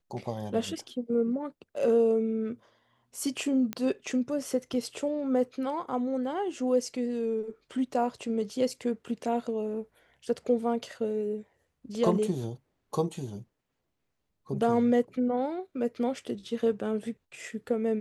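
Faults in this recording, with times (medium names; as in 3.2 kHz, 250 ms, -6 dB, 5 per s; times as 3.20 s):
3.73 s: pop -17 dBFS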